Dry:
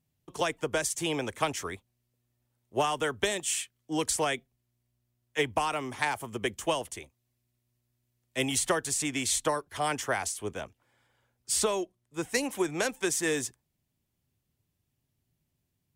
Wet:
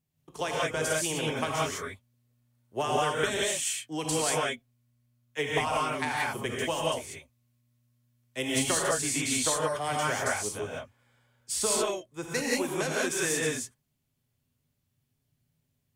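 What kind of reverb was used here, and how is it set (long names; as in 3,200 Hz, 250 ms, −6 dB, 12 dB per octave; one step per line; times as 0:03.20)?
reverb whose tail is shaped and stops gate 210 ms rising, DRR −4.5 dB
level −4 dB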